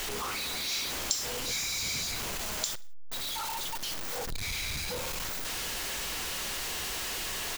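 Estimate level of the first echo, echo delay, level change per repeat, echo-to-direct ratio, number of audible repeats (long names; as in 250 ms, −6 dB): −21.5 dB, 61 ms, −6.5 dB, −20.5 dB, 3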